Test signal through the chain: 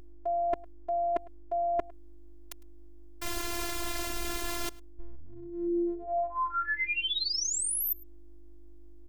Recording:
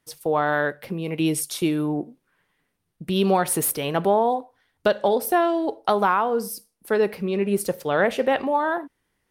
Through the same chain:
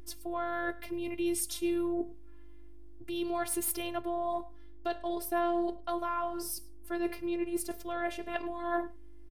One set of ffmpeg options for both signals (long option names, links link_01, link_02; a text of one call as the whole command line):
ffmpeg -i in.wav -filter_complex "[0:a]areverse,acompressor=threshold=-26dB:ratio=10,areverse,asplit=2[link_01][link_02];[link_02]adelay=105,volume=-22dB,highshelf=frequency=4000:gain=-2.36[link_03];[link_01][link_03]amix=inputs=2:normalize=0,aeval=exprs='val(0)+0.00891*(sin(2*PI*50*n/s)+sin(2*PI*2*50*n/s)/2+sin(2*PI*3*50*n/s)/3+sin(2*PI*4*50*n/s)/4+sin(2*PI*5*50*n/s)/5)':channel_layout=same,afftfilt=real='hypot(re,im)*cos(PI*b)':imag='0':win_size=512:overlap=0.75" out.wav